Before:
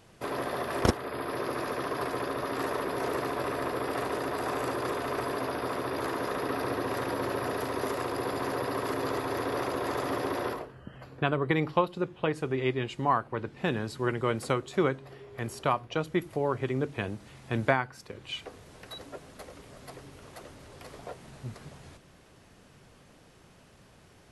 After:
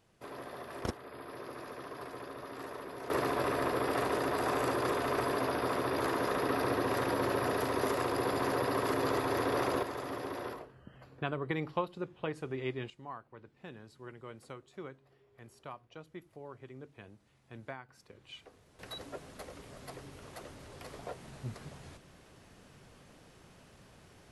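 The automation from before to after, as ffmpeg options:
-af "asetnsamples=n=441:p=0,asendcmd='3.1 volume volume 0dB;9.83 volume volume -8dB;12.9 volume volume -19dB;17.89 volume volume -12.5dB;18.79 volume volume -1dB',volume=0.251"

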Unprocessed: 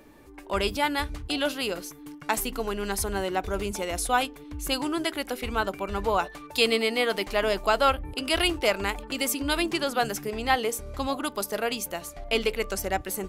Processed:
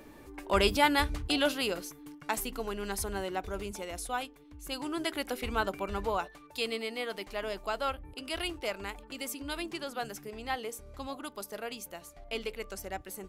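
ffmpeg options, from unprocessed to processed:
-af "volume=3.55,afade=t=out:st=1.06:d=1.09:silence=0.446684,afade=t=out:st=3.08:d=1.52:silence=0.421697,afade=t=in:st=4.6:d=0.58:silence=0.316228,afade=t=out:st=5.84:d=0.55:silence=0.421697"

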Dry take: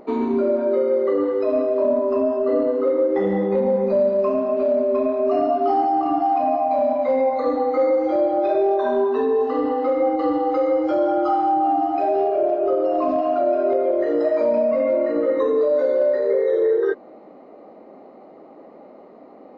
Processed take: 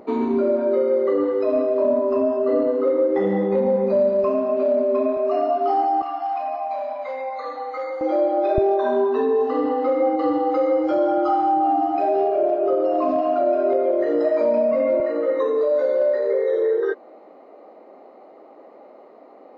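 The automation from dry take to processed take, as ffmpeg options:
-af "asetnsamples=n=441:p=0,asendcmd='4.24 highpass f 160;5.17 highpass f 400;6.02 highpass f 980;8.01 highpass f 260;8.58 highpass f 97;15 highpass f 370',highpass=45"

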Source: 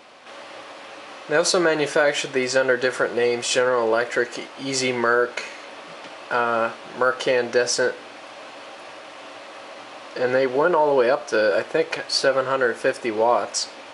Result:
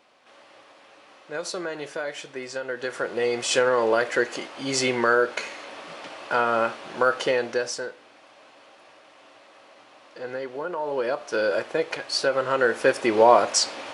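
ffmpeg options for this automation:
-af "volume=5.62,afade=t=in:st=2.68:d=0.93:silence=0.266073,afade=t=out:st=7.14:d=0.72:silence=0.266073,afade=t=in:st=10.72:d=0.76:silence=0.375837,afade=t=in:st=12.31:d=0.9:silence=0.421697"

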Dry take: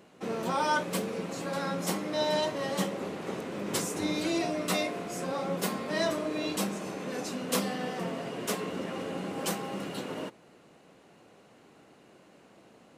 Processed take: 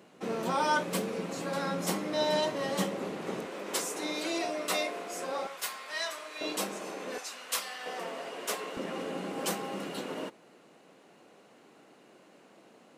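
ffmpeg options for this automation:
-af "asetnsamples=n=441:p=0,asendcmd='3.46 highpass f 410;5.47 highpass f 1200;6.41 highpass f 350;7.18 highpass f 1100;7.86 highpass f 490;8.77 highpass f 200',highpass=130"

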